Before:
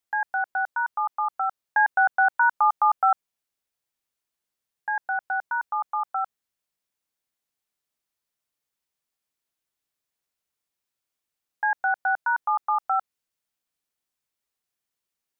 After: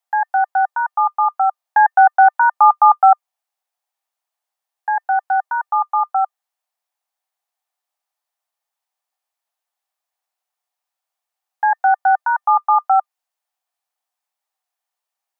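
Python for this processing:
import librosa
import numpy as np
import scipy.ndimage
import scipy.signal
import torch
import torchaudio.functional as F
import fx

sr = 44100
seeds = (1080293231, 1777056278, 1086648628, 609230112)

y = fx.highpass_res(x, sr, hz=760.0, q=4.3)
y = fx.small_body(y, sr, hz=(1200.0, 1800.0), ring_ms=75, db=6)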